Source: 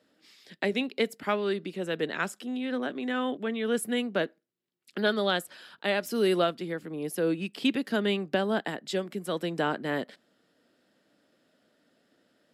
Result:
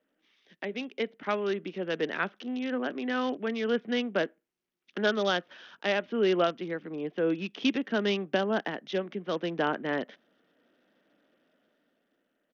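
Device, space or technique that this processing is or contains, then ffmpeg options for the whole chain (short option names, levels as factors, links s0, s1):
Bluetooth headset: -af "highpass=170,dynaudnorm=f=200:g=11:m=2.82,aresample=8000,aresample=44100,volume=0.376" -ar 48000 -c:a sbc -b:a 64k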